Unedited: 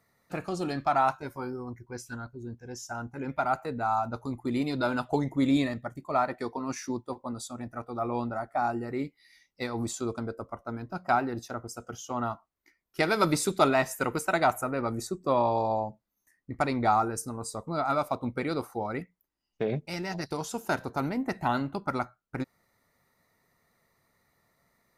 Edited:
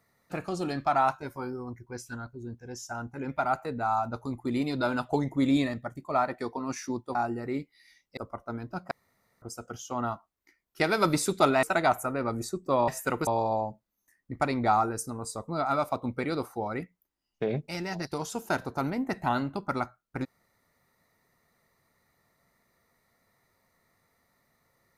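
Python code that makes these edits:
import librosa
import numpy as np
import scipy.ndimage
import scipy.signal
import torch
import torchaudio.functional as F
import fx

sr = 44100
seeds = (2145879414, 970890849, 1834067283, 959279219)

y = fx.edit(x, sr, fx.cut(start_s=7.15, length_s=1.45),
    fx.cut(start_s=9.62, length_s=0.74),
    fx.room_tone_fill(start_s=11.1, length_s=0.51),
    fx.move(start_s=13.82, length_s=0.39, to_s=15.46), tone=tone)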